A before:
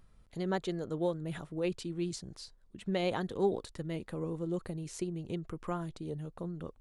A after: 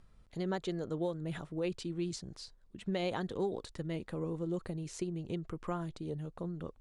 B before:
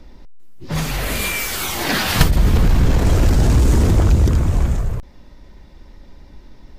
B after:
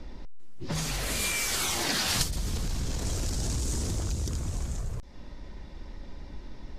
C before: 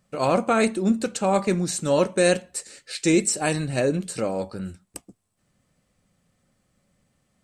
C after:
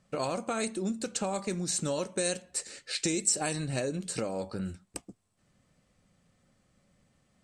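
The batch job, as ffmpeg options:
-filter_complex "[0:a]lowpass=8800,acrossover=split=4600[s0][s1];[s0]acompressor=threshold=0.0316:ratio=6[s2];[s2][s1]amix=inputs=2:normalize=0"

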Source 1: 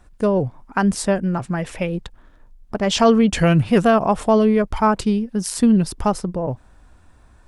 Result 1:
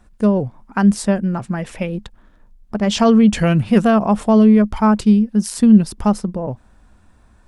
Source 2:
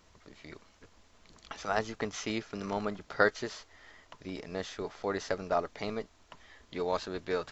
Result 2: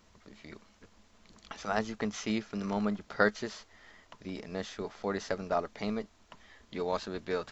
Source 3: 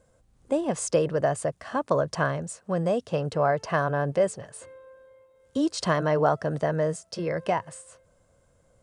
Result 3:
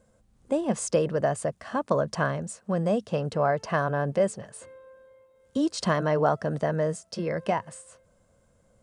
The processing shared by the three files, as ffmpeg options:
-af "equalizer=f=210:t=o:w=0.23:g=9.5,volume=0.891"

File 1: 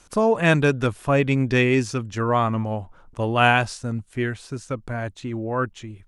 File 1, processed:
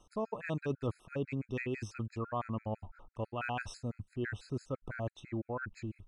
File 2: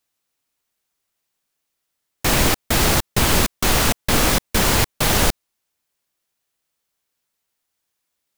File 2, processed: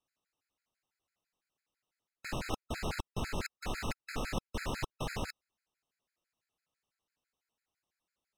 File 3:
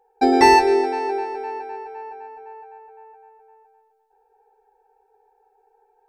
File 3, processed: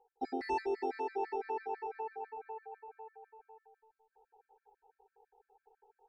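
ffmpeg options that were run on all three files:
-af "aemphasis=mode=reproduction:type=50fm,bandreject=f=3300:w=16,areverse,acompressor=threshold=0.0398:ratio=6,areverse,afftfilt=real='re*gt(sin(2*PI*6*pts/sr)*(1-2*mod(floor(b*sr/1024/1300),2)),0)':imag='im*gt(sin(2*PI*6*pts/sr)*(1-2*mod(floor(b*sr/1024/1300),2)),0)':win_size=1024:overlap=0.75,volume=0.668"

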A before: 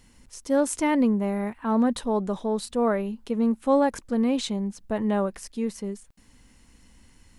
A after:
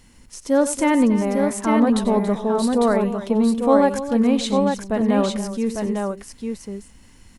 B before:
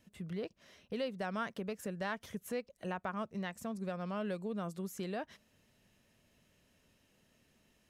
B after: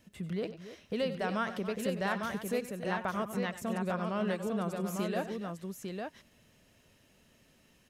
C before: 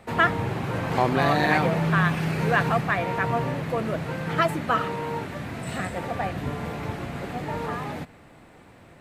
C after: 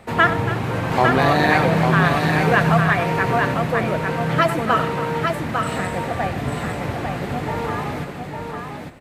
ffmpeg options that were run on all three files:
-af "aecho=1:1:88|97|280|851:0.141|0.188|0.211|0.596,volume=1.68"

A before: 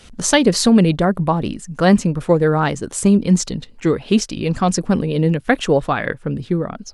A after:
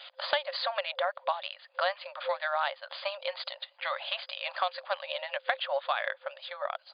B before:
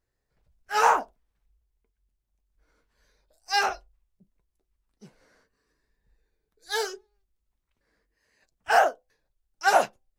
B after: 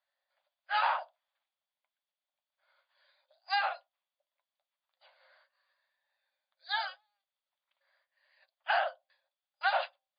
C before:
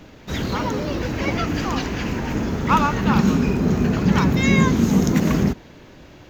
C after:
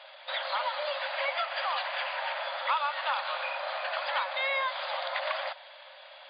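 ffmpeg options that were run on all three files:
-filter_complex "[0:a]afftfilt=real='re*between(b*sr/4096,520,4900)':imag='im*between(b*sr/4096,520,4900)':win_size=4096:overlap=0.75,equalizer=f=3400:t=o:w=0.22:g=8,acrossover=split=1200|2400[s0][s1][s2];[s0]acompressor=threshold=0.0251:ratio=4[s3];[s1]acompressor=threshold=0.0178:ratio=4[s4];[s2]acompressor=threshold=0.0112:ratio=4[s5];[s3][s4][s5]amix=inputs=3:normalize=0"

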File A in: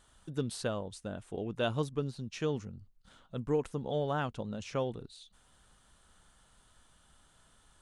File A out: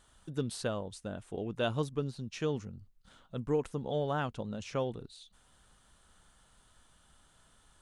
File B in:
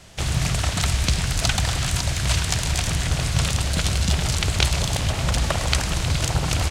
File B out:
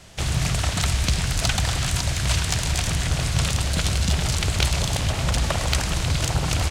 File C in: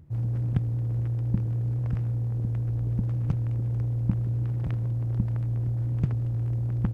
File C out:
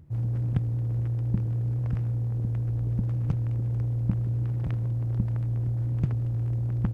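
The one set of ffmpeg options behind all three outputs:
-af "asoftclip=type=tanh:threshold=0.355"

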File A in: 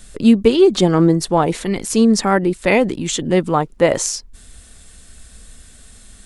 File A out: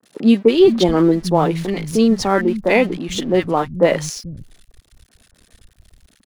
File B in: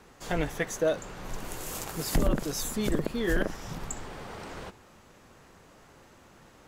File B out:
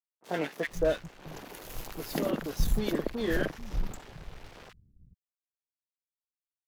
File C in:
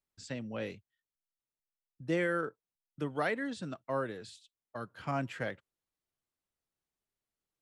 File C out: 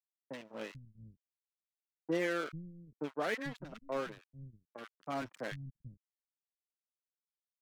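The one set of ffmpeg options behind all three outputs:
-filter_complex "[0:a]equalizer=f=8100:t=o:w=0.6:g=-13,aeval=exprs='sgn(val(0))*max(abs(val(0))-0.01,0)':c=same,acrossover=split=170|1200[s0][s1][s2];[s2]adelay=30[s3];[s0]adelay=440[s4];[s4][s1][s3]amix=inputs=3:normalize=0,volume=1.12"

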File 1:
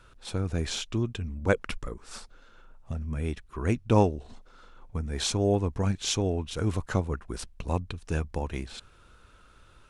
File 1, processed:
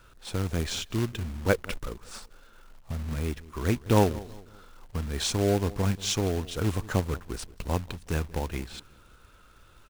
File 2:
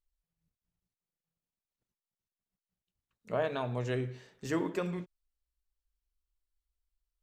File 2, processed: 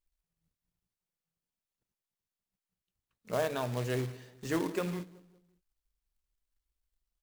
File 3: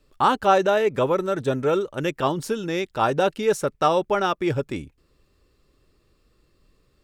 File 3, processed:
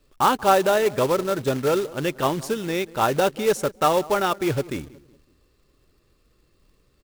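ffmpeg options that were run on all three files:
-filter_complex "[0:a]asplit=2[s0][s1];[s1]adelay=185,lowpass=f=1200:p=1,volume=0.112,asplit=2[s2][s3];[s3]adelay=185,lowpass=f=1200:p=1,volume=0.42,asplit=2[s4][s5];[s5]adelay=185,lowpass=f=1200:p=1,volume=0.42[s6];[s0][s2][s4][s6]amix=inputs=4:normalize=0,acrusher=bits=3:mode=log:mix=0:aa=0.000001"

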